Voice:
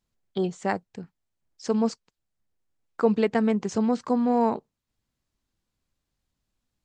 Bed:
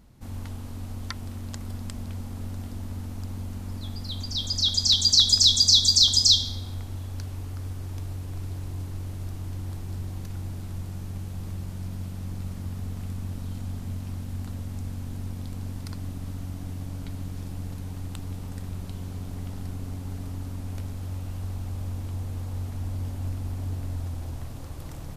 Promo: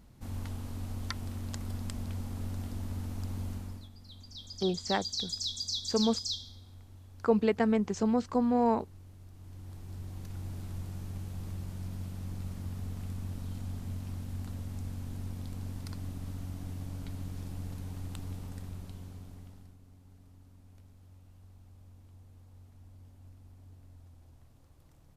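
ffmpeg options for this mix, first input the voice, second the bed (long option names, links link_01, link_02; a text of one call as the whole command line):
ffmpeg -i stem1.wav -i stem2.wav -filter_complex "[0:a]adelay=4250,volume=-4dB[link_01];[1:a]volume=10dB,afade=type=out:start_time=3.5:duration=0.39:silence=0.177828,afade=type=in:start_time=9.32:duration=1.27:silence=0.237137,afade=type=out:start_time=18.27:duration=1.5:silence=0.133352[link_02];[link_01][link_02]amix=inputs=2:normalize=0" out.wav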